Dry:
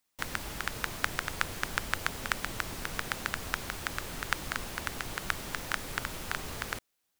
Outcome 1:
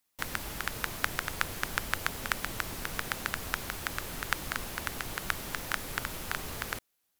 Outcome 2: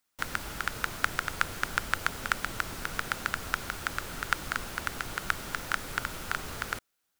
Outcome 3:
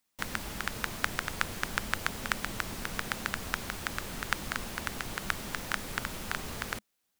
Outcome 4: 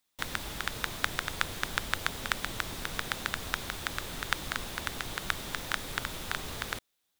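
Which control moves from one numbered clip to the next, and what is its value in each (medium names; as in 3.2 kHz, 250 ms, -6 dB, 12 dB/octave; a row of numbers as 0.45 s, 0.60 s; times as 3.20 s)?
peaking EQ, frequency: 12 kHz, 1.4 kHz, 210 Hz, 3.6 kHz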